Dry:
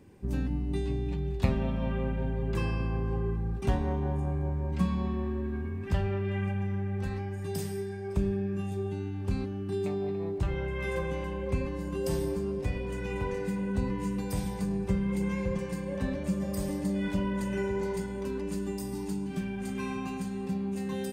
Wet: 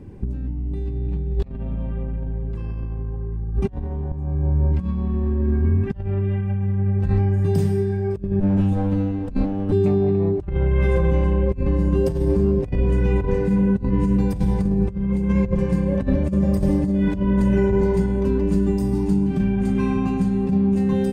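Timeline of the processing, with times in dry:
4.12–5.01 fade in, from -19.5 dB
8.4–9.72 minimum comb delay 3.8 ms
whole clip: tilt -3 dB/oct; negative-ratio compressor -24 dBFS, ratio -0.5; gain +5 dB

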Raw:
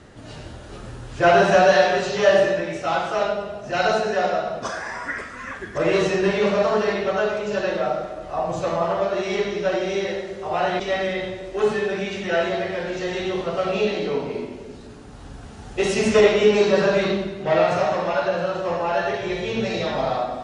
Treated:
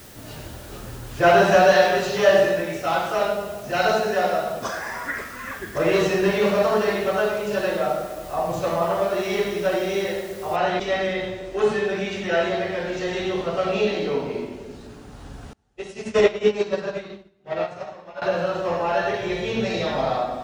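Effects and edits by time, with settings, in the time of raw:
10.56 noise floor step -47 dB -69 dB
15.53–18.22 upward expander 2.5:1, over -31 dBFS

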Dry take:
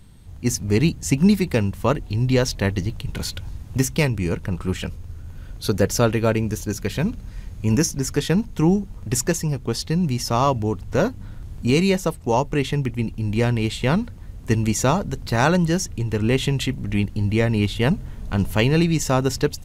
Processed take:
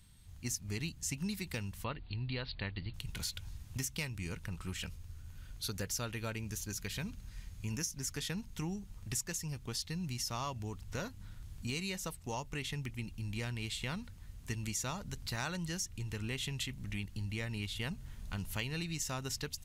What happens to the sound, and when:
1.84–2.94 Chebyshev low-pass 4600 Hz, order 8
whole clip: passive tone stack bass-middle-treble 5-5-5; compressor 3:1, threshold -37 dBFS; gain +1 dB

